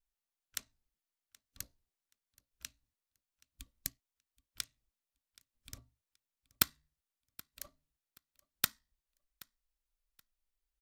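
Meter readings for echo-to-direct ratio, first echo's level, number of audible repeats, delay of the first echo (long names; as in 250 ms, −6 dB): −23.0 dB, −23.0 dB, 1, 776 ms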